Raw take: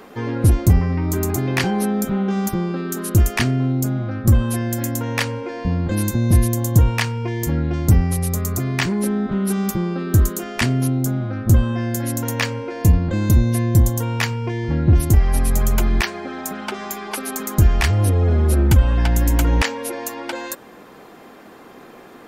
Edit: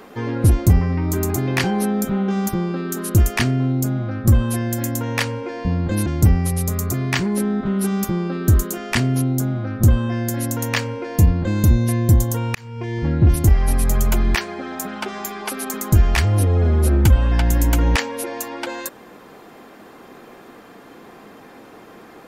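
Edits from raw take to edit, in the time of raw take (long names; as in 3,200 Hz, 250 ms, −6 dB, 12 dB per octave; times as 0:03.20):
0:06.06–0:07.72: remove
0:14.21–0:14.63: fade in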